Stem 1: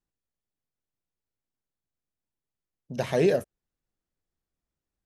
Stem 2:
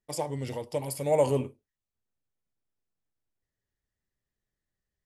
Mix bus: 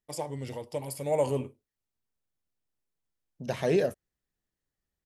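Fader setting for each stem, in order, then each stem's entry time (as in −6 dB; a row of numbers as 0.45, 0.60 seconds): −3.0, −3.0 decibels; 0.50, 0.00 seconds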